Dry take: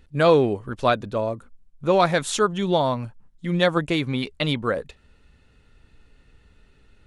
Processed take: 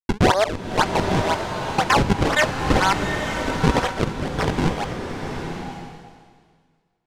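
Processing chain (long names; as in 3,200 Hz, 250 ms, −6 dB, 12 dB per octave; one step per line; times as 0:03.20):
reversed piece by piece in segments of 113 ms
high-pass filter 650 Hz 12 dB per octave
noise gate with hold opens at −52 dBFS
high-shelf EQ 9,600 Hz +7 dB
in parallel at +3 dB: brickwall limiter −16 dBFS, peak gain reduction 10 dB
on the sum: log-companded quantiser 6 bits
pitch shifter +6.5 semitones
sample-and-hold swept by an LFO 41×, swing 160% 2 Hz
high-frequency loss of the air 67 metres
slow-attack reverb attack 920 ms, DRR 4.5 dB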